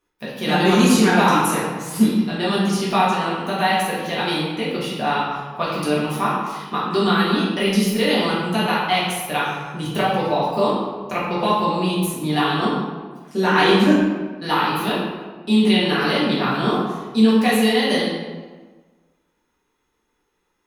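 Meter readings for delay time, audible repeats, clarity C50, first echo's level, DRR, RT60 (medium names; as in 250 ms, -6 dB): no echo, no echo, 0.0 dB, no echo, -8.0 dB, 1.4 s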